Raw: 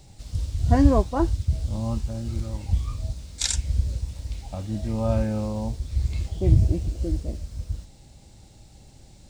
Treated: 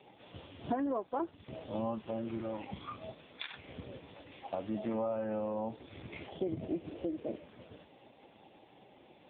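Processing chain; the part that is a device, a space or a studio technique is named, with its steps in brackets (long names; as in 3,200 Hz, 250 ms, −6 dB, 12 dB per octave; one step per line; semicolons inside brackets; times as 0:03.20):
0:03.31–0:03.85: dynamic equaliser 970 Hz, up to +3 dB, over −51 dBFS, Q 1.8
voicemail (band-pass filter 370–3,200 Hz; downward compressor 10 to 1, threshold −37 dBFS, peak gain reduction 18 dB; level +6.5 dB; AMR narrowband 5.15 kbit/s 8,000 Hz)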